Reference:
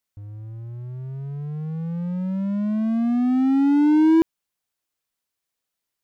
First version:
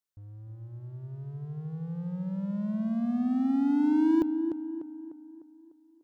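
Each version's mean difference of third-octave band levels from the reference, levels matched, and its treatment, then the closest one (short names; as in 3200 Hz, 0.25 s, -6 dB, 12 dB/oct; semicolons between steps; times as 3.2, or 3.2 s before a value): 3.0 dB: bell 2300 Hz -6.5 dB 0.42 oct; tape echo 0.299 s, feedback 54%, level -4 dB, low-pass 1900 Hz; gain -8.5 dB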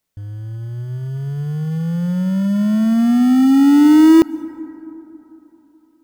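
4.5 dB: in parallel at -11 dB: sample-rate reducer 1600 Hz, jitter 0%; on the sum: plate-style reverb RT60 3.6 s, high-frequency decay 0.3×, pre-delay 0.12 s, DRR 19.5 dB; gain +5.5 dB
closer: first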